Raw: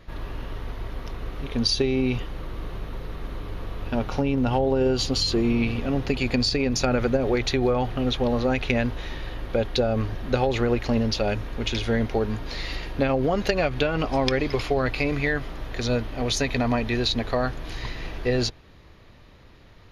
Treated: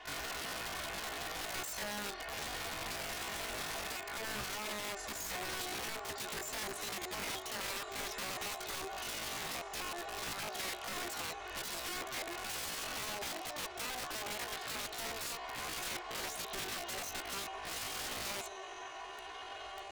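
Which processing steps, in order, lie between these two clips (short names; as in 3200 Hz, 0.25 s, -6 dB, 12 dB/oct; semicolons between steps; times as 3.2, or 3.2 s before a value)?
three-band isolator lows -21 dB, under 320 Hz, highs -18 dB, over 2200 Hz; compressor 6:1, threshold -41 dBFS, peak gain reduction 20 dB; low shelf 190 Hz -7 dB; comb 4.4 ms, depth 87%; diffused feedback echo 1.651 s, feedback 55%, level -10 dB; wrapped overs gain 38.5 dB; pitch shift +8 st; gain +4 dB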